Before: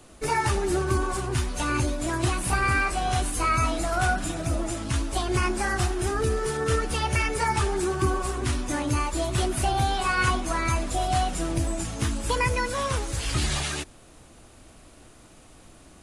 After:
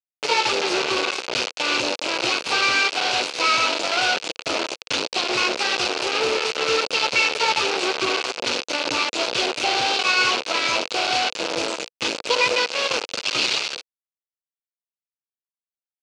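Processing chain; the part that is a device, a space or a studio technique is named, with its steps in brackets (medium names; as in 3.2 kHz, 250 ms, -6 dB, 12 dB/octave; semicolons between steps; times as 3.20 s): hand-held game console (bit crusher 4-bit; cabinet simulation 460–5700 Hz, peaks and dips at 490 Hz +5 dB, 740 Hz -4 dB, 1.1 kHz -4 dB, 1.8 kHz -8 dB, 2.6 kHz +7 dB, 4.4 kHz +5 dB); trim +5 dB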